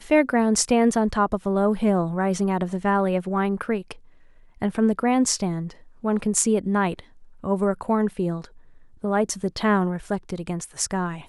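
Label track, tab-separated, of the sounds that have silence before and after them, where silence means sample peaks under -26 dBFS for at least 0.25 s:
4.620000	5.700000	sound
6.040000	6.990000	sound
7.440000	8.450000	sound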